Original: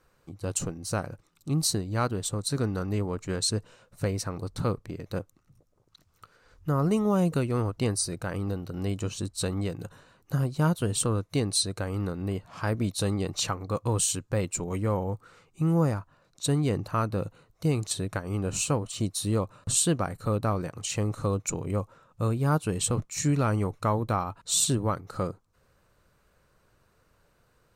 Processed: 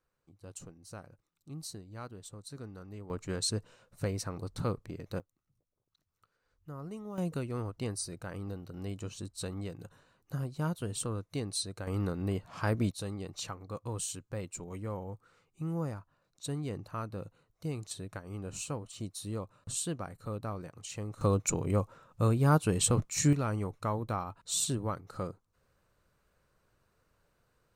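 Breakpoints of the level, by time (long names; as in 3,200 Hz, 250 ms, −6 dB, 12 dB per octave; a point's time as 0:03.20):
−17 dB
from 0:03.10 −5 dB
from 0:05.20 −18 dB
from 0:07.18 −9 dB
from 0:11.87 −2 dB
from 0:12.91 −11 dB
from 0:21.21 0 dB
from 0:23.33 −7 dB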